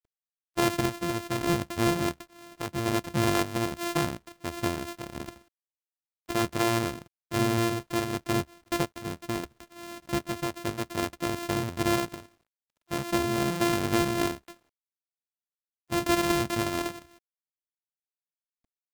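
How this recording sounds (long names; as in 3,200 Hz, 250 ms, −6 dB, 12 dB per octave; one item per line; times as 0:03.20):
a buzz of ramps at a fixed pitch in blocks of 128 samples
sample-and-hold tremolo
a quantiser's noise floor 12 bits, dither none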